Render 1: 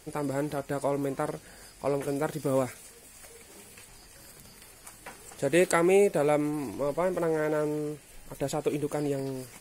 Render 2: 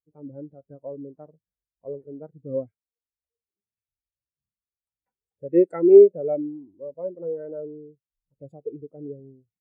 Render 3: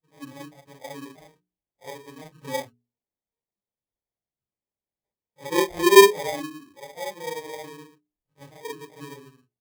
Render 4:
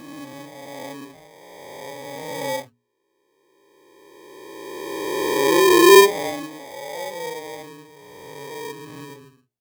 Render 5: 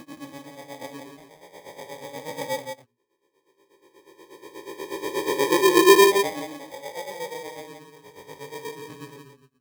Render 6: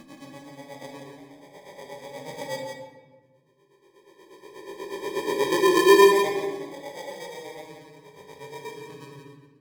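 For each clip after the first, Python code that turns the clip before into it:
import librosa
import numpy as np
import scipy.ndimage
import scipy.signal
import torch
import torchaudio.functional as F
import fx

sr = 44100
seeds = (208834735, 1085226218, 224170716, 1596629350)

y1 = scipy.signal.sosfilt(scipy.signal.butter(2, 44.0, 'highpass', fs=sr, output='sos'), x)
y1 = fx.low_shelf(y1, sr, hz=140.0, db=7.0)
y1 = fx.spectral_expand(y1, sr, expansion=2.5)
y1 = y1 * librosa.db_to_amplitude(7.0)
y2 = fx.phase_scramble(y1, sr, seeds[0], window_ms=100)
y2 = fx.sample_hold(y2, sr, seeds[1], rate_hz=1400.0, jitter_pct=0)
y2 = fx.hum_notches(y2, sr, base_hz=60, count=7)
y2 = y2 * librosa.db_to_amplitude(-2.5)
y3 = fx.spec_swells(y2, sr, rise_s=2.65)
y3 = y3 * librosa.db_to_amplitude(-1.0)
y4 = y3 * (1.0 - 0.95 / 2.0 + 0.95 / 2.0 * np.cos(2.0 * np.pi * 8.3 * (np.arange(len(y3)) / sr)))
y4 = y4 + 10.0 ** (-6.5 / 20.0) * np.pad(y4, (int(171 * sr / 1000.0), 0))[:len(y4)]
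y5 = fx.high_shelf(y4, sr, hz=12000.0, db=-8.0)
y5 = fx.room_shoebox(y5, sr, seeds[2], volume_m3=1000.0, walls='mixed', distance_m=1.2)
y5 = y5 * librosa.db_to_amplitude(-4.0)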